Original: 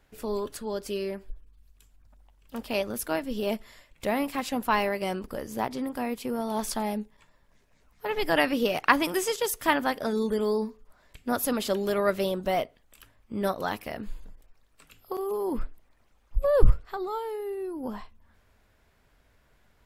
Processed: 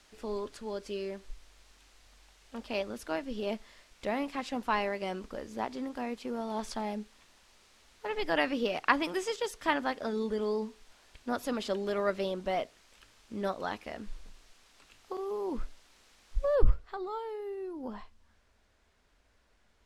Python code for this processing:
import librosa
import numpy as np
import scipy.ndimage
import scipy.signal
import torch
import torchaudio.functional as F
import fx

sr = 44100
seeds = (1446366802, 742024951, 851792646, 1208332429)

y = fx.noise_floor_step(x, sr, seeds[0], at_s=16.55, before_db=-53, after_db=-68, tilt_db=0.0)
y = scipy.signal.sosfilt(scipy.signal.butter(2, 5900.0, 'lowpass', fs=sr, output='sos'), y)
y = fx.peak_eq(y, sr, hz=130.0, db=-14.5, octaves=0.35)
y = F.gain(torch.from_numpy(y), -5.0).numpy()